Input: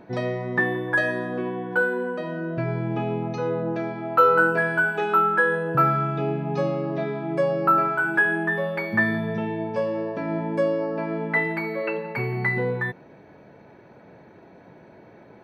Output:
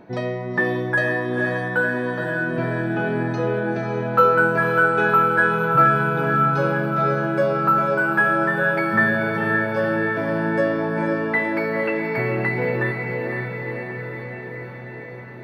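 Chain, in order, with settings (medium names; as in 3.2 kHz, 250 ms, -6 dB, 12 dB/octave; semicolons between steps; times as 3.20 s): echo that smears into a reverb 500 ms, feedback 70%, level -4 dB; trim +1 dB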